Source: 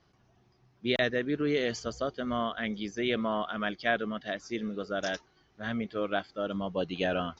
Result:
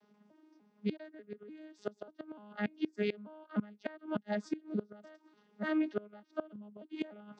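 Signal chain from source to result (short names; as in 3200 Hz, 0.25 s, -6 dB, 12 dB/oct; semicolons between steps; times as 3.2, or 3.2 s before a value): arpeggiated vocoder bare fifth, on G#3, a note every 0.296 s; flipped gate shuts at -26 dBFS, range -25 dB; HPF 130 Hz; gain +4.5 dB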